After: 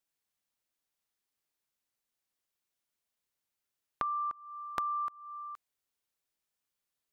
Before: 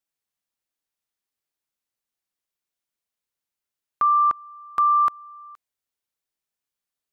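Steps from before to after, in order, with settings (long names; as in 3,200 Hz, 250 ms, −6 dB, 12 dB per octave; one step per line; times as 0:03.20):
downward compressor 20 to 1, threshold −32 dBFS, peak gain reduction 16 dB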